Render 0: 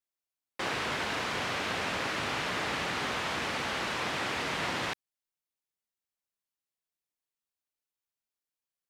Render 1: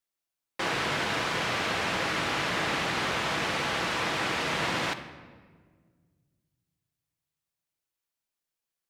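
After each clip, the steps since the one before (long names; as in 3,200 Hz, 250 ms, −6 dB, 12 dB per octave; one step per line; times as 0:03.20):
rectangular room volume 1,900 cubic metres, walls mixed, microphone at 0.7 metres
level +3 dB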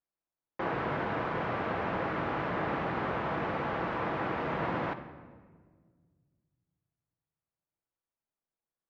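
low-pass filter 1,200 Hz 12 dB per octave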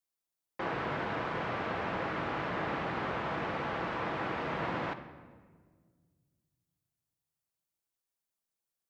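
high-shelf EQ 3,300 Hz +10.5 dB
level −3 dB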